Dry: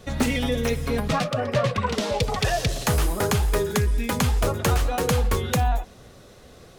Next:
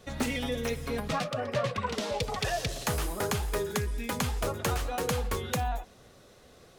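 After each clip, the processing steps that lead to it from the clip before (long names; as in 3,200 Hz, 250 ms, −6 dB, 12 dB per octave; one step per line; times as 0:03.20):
low-shelf EQ 220 Hz −5 dB
level −6 dB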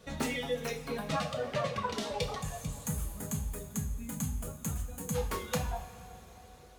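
gain on a spectral selection 0:02.39–0:05.15, 300–6,200 Hz −14 dB
reverb reduction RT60 1.5 s
coupled-rooms reverb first 0.41 s, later 4.8 s, from −18 dB, DRR 1.5 dB
level −3.5 dB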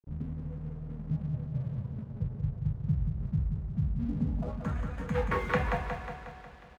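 low-pass filter sweep 130 Hz → 1,900 Hz, 0:03.80–0:04.76
dead-zone distortion −55 dBFS
repeating echo 181 ms, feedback 57%, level −5.5 dB
level +3 dB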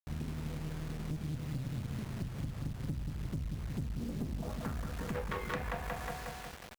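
bit reduction 8 bits
downward compressor 5 to 1, threshold −34 dBFS, peak gain reduction 11 dB
asymmetric clip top −43.5 dBFS
level +2.5 dB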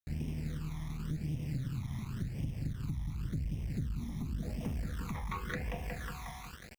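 all-pass phaser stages 12, 0.91 Hz, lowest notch 470–1,400 Hz
level +1 dB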